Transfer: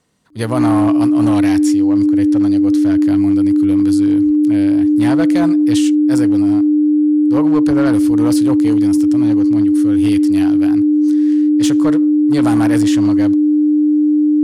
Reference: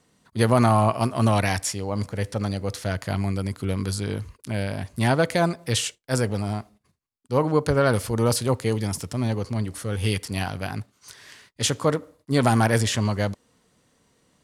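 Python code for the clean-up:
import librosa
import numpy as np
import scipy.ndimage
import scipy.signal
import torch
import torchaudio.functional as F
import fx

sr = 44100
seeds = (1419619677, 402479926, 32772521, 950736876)

y = fx.fix_declip(x, sr, threshold_db=-7.5)
y = fx.notch(y, sr, hz=300.0, q=30.0)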